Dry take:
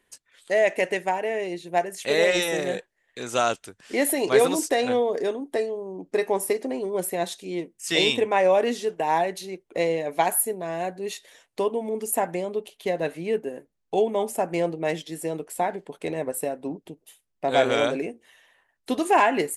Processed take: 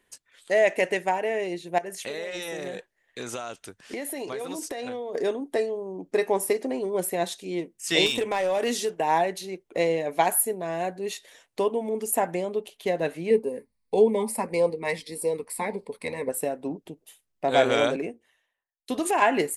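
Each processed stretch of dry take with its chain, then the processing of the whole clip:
1.78–5.15 notch 7600 Hz, Q 18 + compressor 16:1, threshold -29 dBFS
8.06–8.9 high shelf 3700 Hz +10.5 dB + compressor 5:1, threshold -21 dBFS + hard clip -20 dBFS
13.3–16.29 ripple EQ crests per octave 0.92, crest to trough 12 dB + LFO notch sine 1.7 Hz 370–2000 Hz
17.96–19.22 compressor 5:1, threshold -23 dBFS + three-band expander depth 100%
whole clip: dry

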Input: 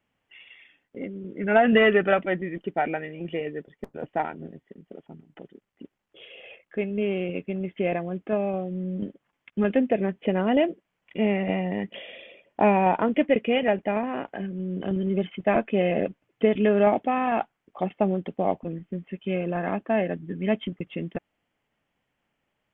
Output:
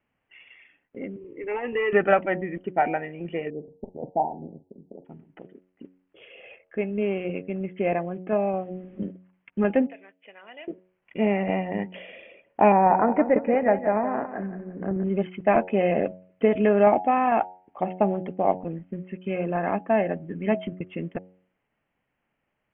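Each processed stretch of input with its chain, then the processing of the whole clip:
1.16–1.93 compressor 5:1, threshold -19 dBFS + air absorption 84 m + fixed phaser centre 1000 Hz, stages 8
3.5–5.05 Chebyshev low-pass 900 Hz, order 6 + doubler 46 ms -13.5 dB
9.87–10.68 HPF 390 Hz 6 dB/oct + differentiator
12.72–15.04 steep low-pass 2000 Hz + feedback echo 0.174 s, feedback 32%, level -10 dB
whole clip: steep low-pass 2800 Hz 36 dB/oct; de-hum 92.09 Hz, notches 10; dynamic EQ 850 Hz, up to +5 dB, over -36 dBFS, Q 1.5

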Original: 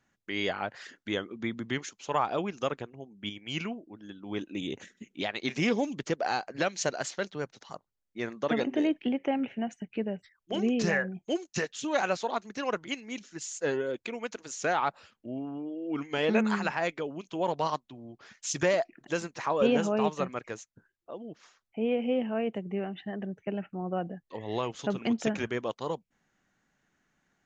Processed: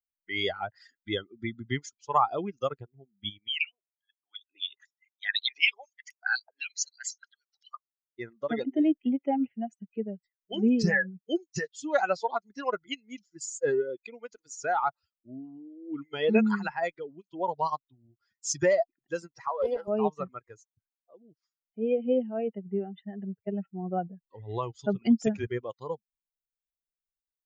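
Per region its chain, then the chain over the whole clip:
3.48–8.19 formant sharpening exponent 1.5 + stepped high-pass 8 Hz 880–6400 Hz
19.48–19.88 median filter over 15 samples + BPF 470–4400 Hz + Doppler distortion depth 0.17 ms
whole clip: per-bin expansion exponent 2; vocal rider within 5 dB 2 s; gain +5.5 dB

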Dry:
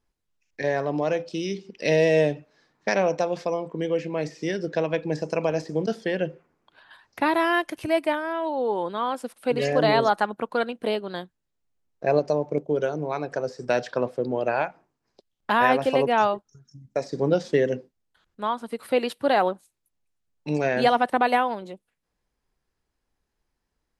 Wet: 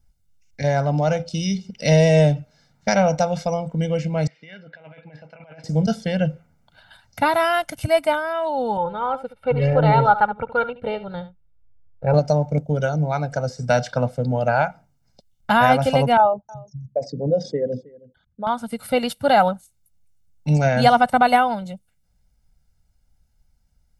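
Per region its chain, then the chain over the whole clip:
4.27–5.64 negative-ratio compressor -28 dBFS, ratio -0.5 + band-pass 2400 Hz, Q 1.1 + air absorption 470 m
8.77–12.14 air absorption 480 m + comb 2.2 ms, depth 69% + echo 72 ms -14 dB
16.17–18.47 formant sharpening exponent 2 + notch comb 1400 Hz + echo 0.317 s -22 dB
whole clip: tone controls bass +14 dB, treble +8 dB; comb 1.4 ms, depth 81%; dynamic EQ 1100 Hz, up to +6 dB, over -32 dBFS, Q 1.5; gain -1 dB

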